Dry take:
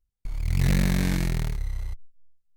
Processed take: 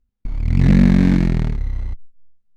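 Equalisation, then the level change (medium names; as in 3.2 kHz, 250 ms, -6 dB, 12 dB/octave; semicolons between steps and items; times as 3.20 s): tape spacing loss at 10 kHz 21 dB; peaking EQ 240 Hz +12.5 dB 0.66 oct; +7.0 dB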